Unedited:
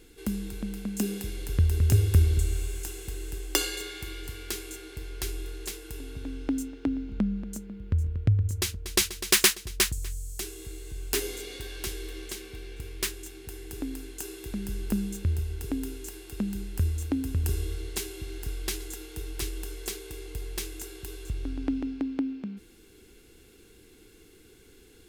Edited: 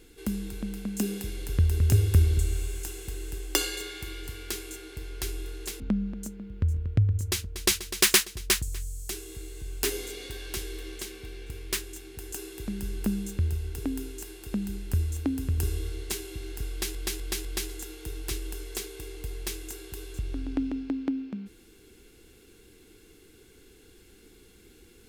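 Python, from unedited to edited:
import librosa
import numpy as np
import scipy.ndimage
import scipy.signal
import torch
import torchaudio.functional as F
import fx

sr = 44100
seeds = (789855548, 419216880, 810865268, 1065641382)

y = fx.edit(x, sr, fx.cut(start_s=5.8, length_s=1.3),
    fx.cut(start_s=13.62, length_s=0.56),
    fx.repeat(start_s=18.56, length_s=0.25, count=4), tone=tone)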